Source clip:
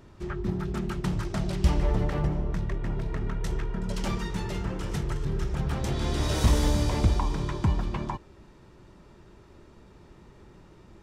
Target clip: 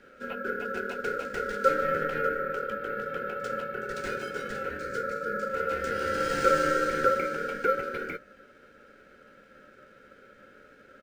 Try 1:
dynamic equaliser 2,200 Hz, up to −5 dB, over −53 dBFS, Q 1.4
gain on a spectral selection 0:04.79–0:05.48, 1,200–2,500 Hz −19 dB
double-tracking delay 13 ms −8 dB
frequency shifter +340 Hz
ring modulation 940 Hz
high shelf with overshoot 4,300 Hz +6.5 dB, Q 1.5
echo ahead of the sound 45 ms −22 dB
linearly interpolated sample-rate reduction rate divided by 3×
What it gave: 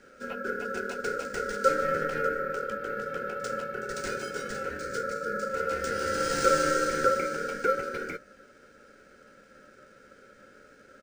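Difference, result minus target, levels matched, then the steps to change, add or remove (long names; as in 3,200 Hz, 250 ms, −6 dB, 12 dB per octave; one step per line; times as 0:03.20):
8,000 Hz band +8.0 dB
remove: high shelf with overshoot 4,300 Hz +6.5 dB, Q 1.5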